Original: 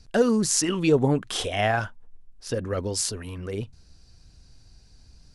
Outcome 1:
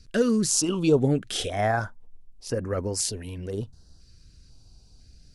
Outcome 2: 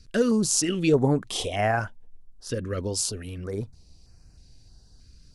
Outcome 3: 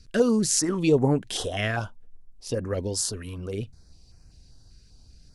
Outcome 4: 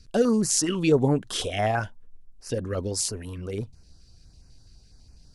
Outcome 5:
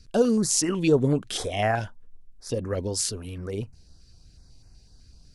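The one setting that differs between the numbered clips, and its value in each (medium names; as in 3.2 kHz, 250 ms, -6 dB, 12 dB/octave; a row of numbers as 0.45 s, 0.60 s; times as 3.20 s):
step-sequenced notch, rate: 2 Hz, 3.2 Hz, 5.1 Hz, 12 Hz, 8 Hz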